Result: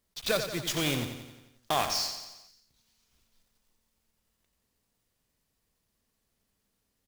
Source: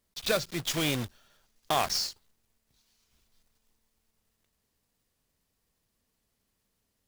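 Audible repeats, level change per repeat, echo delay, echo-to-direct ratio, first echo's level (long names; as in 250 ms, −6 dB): 6, −5.0 dB, 89 ms, −7.0 dB, −8.5 dB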